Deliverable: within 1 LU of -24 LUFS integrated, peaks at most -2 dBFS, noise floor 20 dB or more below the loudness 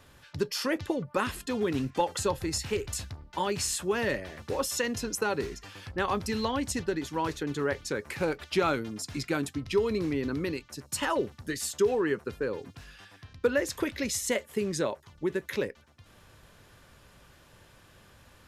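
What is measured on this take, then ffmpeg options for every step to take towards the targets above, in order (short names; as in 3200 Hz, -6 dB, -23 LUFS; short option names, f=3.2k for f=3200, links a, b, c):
loudness -31.0 LUFS; peak -14.5 dBFS; loudness target -24.0 LUFS
-> -af "volume=7dB"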